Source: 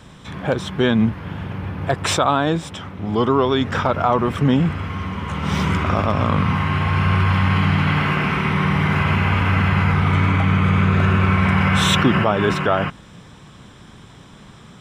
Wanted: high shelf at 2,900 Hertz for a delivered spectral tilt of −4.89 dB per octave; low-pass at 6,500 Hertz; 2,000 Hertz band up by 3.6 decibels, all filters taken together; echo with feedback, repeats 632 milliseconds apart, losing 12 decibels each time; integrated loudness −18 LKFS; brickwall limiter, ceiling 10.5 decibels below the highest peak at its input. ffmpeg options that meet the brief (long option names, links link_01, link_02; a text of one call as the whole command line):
ffmpeg -i in.wav -af "lowpass=6500,equalizer=frequency=2000:width_type=o:gain=6,highshelf=frequency=2900:gain=-4,alimiter=limit=-13.5dB:level=0:latency=1,aecho=1:1:632|1264|1896:0.251|0.0628|0.0157,volume=5dB" out.wav